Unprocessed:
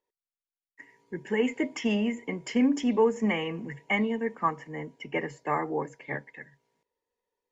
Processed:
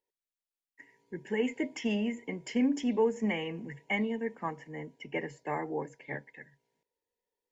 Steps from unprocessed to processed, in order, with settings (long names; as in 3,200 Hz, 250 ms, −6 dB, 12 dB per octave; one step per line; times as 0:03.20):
parametric band 1,200 Hz −10.5 dB 0.33 octaves
level −4 dB